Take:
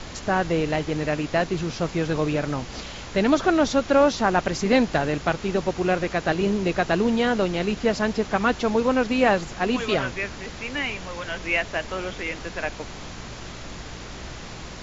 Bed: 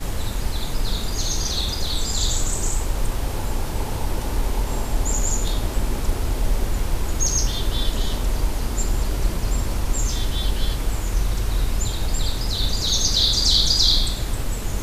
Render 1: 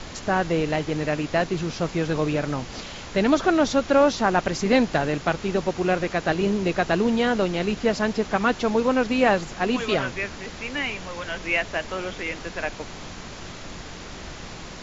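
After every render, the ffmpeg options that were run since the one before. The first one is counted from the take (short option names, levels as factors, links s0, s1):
-af "bandreject=f=60:t=h:w=4,bandreject=f=120:t=h:w=4"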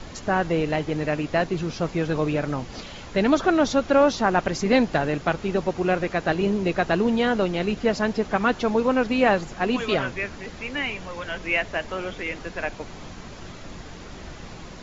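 -af "afftdn=nr=6:nf=-39"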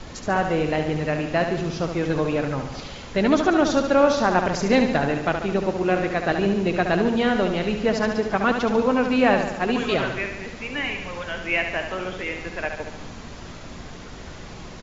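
-af "aecho=1:1:71|142|213|284|355|426|497|568:0.447|0.264|0.155|0.0917|0.0541|0.0319|0.0188|0.0111"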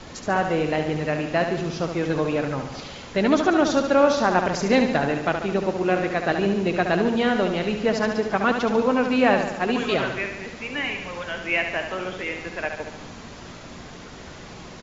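-af "lowshelf=f=64:g=-11"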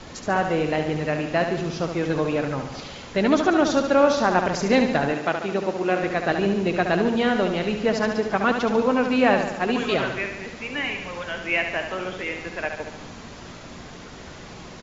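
-filter_complex "[0:a]asettb=1/sr,asplit=3[s0][s1][s2];[s0]atrim=end=5.134[s3];[s1]atrim=start=5.13:end=6.03,asetpts=PTS-STARTPTS,afade=t=in:d=0.004:c=qsin,afade=t=out:st=0.896:d=0.004:c=qsin,highpass=f=210:p=1[s4];[s2]atrim=start=6.026[s5];[s3][s4]acrossfade=d=0.004:c1=hsin:c2=qsin[s6];[s6][s5]acrossfade=d=0.004:c1=qsin:c2=hsin"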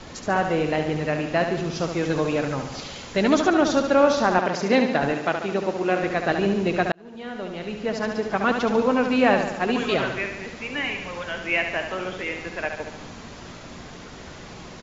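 -filter_complex "[0:a]asettb=1/sr,asplit=3[s0][s1][s2];[s0]atrim=end=1.754[s3];[s1]atrim=start=1.75:end=3.49,asetpts=PTS-STARTPTS,afade=t=in:d=0.004:c=qsin,afade=t=out:st=1.736:d=0.004:c=qsin,highshelf=f=6300:g=9.5[s4];[s2]atrim=start=3.486[s5];[s3][s4]acrossfade=d=0.004:c1=hsin:c2=qsin[s6];[s6][s5]acrossfade=d=0.004:c1=qsin:c2=hsin,asettb=1/sr,asplit=3[s7][s8][s9];[s7]atrim=end=4.384[s10];[s8]atrim=start=4.38:end=5.02,asetpts=PTS-STARTPTS,afade=t=in:d=0.004:c=qsin,afade=t=out:st=0.636:d=0.004:c=qsin,highpass=170,lowpass=5900[s11];[s9]atrim=start=5.016[s12];[s10][s11]acrossfade=d=0.004:c1=hsin:c2=qsin[s13];[s13][s12]acrossfade=d=0.004:c1=qsin:c2=hsin,asplit=2[s14][s15];[s14]atrim=end=6.92,asetpts=PTS-STARTPTS,afade=t=out:st=6.916:d=0.004:c=hsin[s16];[s15]atrim=start=6.92,asetpts=PTS-STARTPTS,afade=t=in:d=1.68[s17];[s16][s17]concat=n=2:v=0:a=1"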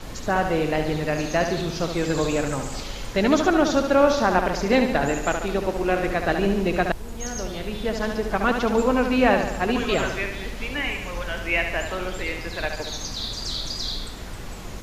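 -filter_complex "[1:a]volume=0.237[s0];[0:a][s0]amix=inputs=2:normalize=0"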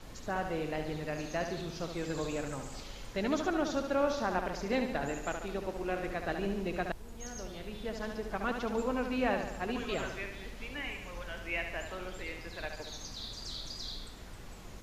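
-af "volume=0.237"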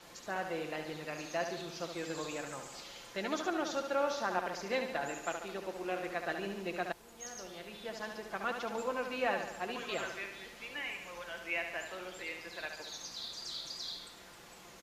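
-af "highpass=f=550:p=1,aecho=1:1:5.8:0.36"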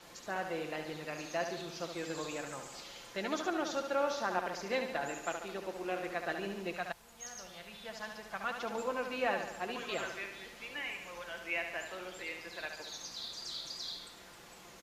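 -filter_complex "[0:a]asettb=1/sr,asplit=3[s0][s1][s2];[s0]atrim=end=6.734[s3];[s1]atrim=start=6.73:end=8.6,asetpts=PTS-STARTPTS,afade=t=in:d=0.004:c=qsin,afade=t=out:st=1.866:d=0.004:c=qsin,equalizer=f=350:t=o:w=0.98:g=-11[s4];[s2]atrim=start=8.596[s5];[s3][s4]acrossfade=d=0.004:c1=hsin:c2=qsin[s6];[s6][s5]acrossfade=d=0.004:c1=qsin:c2=hsin"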